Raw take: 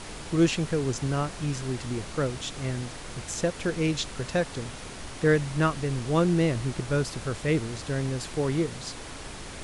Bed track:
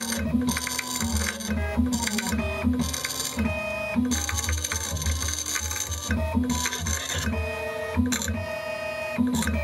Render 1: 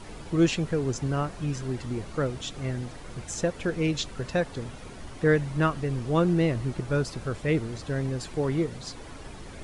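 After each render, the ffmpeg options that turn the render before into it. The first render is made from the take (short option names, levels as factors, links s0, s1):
-af "afftdn=nr=9:nf=-41"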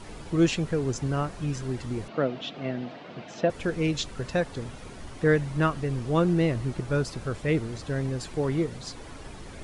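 -filter_complex "[0:a]asettb=1/sr,asplit=3[s0][s1][s2];[s0]atrim=end=2.084[s3];[s1]atrim=start=2.08:end=3.5,asetpts=PTS-STARTPTS,afade=t=in:d=0.004:c=qsin,afade=t=out:st=1.416:d=0.004:c=qsin,highpass=f=150:w=0.5412,highpass=f=150:w=1.3066,equalizer=f=250:t=q:w=4:g=4,equalizer=f=660:t=q:w=4:g=9,equalizer=f=2800:t=q:w=4:g=4,lowpass=f=4300:w=0.5412,lowpass=f=4300:w=1.3066[s4];[s2]atrim=start=3.496[s5];[s3][s4]acrossfade=d=0.004:c1=hsin:c2=qsin[s6];[s6][s5]acrossfade=d=0.004:c1=qsin:c2=hsin"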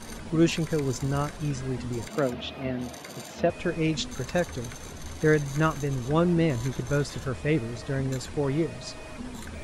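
-filter_complex "[1:a]volume=0.158[s0];[0:a][s0]amix=inputs=2:normalize=0"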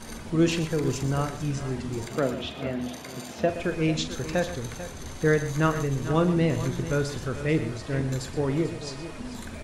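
-filter_complex "[0:a]asplit=2[s0][s1];[s1]adelay=44,volume=0.266[s2];[s0][s2]amix=inputs=2:normalize=0,aecho=1:1:121|442:0.237|0.224"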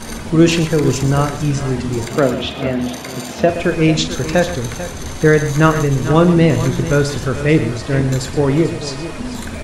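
-af "volume=3.76,alimiter=limit=0.891:level=0:latency=1"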